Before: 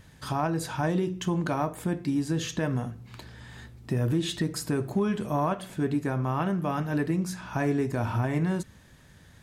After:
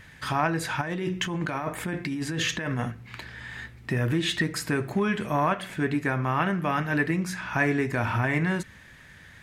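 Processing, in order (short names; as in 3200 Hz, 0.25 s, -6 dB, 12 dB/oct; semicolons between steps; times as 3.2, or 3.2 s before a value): bell 2000 Hz +13 dB 1.3 oct; 0.81–2.92 negative-ratio compressor -29 dBFS, ratio -1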